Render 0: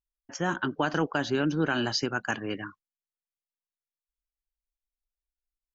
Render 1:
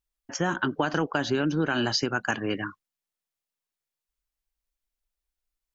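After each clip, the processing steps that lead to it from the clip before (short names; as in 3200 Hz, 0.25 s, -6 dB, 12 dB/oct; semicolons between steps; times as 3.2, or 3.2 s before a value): compressor 3:1, threshold -28 dBFS, peak gain reduction 6 dB; gain +5.5 dB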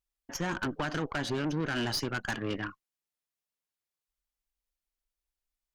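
tube stage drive 27 dB, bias 0.65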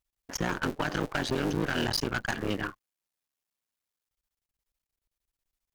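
cycle switcher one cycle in 3, muted; gain +4 dB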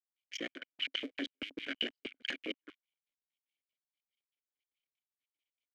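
step gate "..x.xx.x" 191 bpm -60 dB; vowel filter i; LFO high-pass square 6.3 Hz 560–2700 Hz; gain +10 dB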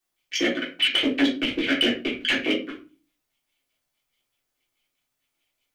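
shoebox room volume 180 m³, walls furnished, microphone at 3.5 m; in parallel at -3 dB: hard clip -28.5 dBFS, distortion -11 dB; on the sum: gain +5.5 dB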